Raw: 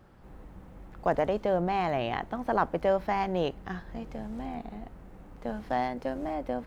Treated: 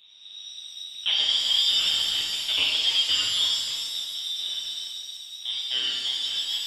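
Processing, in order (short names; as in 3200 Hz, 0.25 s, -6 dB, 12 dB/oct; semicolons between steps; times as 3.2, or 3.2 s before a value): median filter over 25 samples; inverted band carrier 3800 Hz; shimmer reverb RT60 1.7 s, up +7 st, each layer -8 dB, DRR -3 dB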